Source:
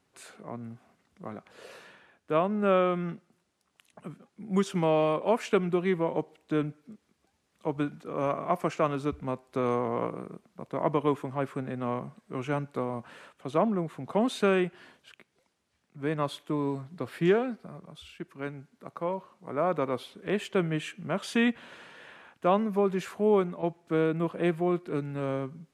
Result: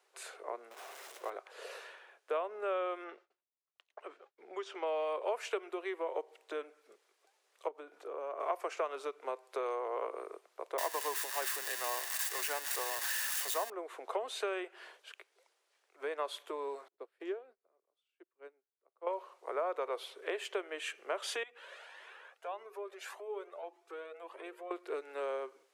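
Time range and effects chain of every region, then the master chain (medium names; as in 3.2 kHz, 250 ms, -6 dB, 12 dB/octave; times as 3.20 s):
0.71–1.30 s: jump at every zero crossing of -44.5 dBFS + band-stop 4.5 kHz, Q 16
3.04–4.87 s: low-pass 4.3 kHz + expander -60 dBFS
7.68–8.40 s: tilt shelf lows +4.5 dB, about 910 Hz + compression 4:1, threshold -38 dBFS
10.78–13.70 s: zero-crossing glitches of -18.5 dBFS + peaking EQ 1.7 kHz +9 dB 0.48 oct + comb 1.1 ms, depth 35%
16.88–19.07 s: peaking EQ 180 Hz +12.5 dB 2.9 oct + upward expansion 2.5:1, over -36 dBFS
21.43–24.71 s: compression 3:1, threshold -37 dBFS + hum notches 60/120/180/240/300/360/420/480 Hz + Shepard-style flanger rising 1.7 Hz
whole clip: compression 6:1, threshold -32 dBFS; steep high-pass 390 Hz 48 dB/octave; trim +1.5 dB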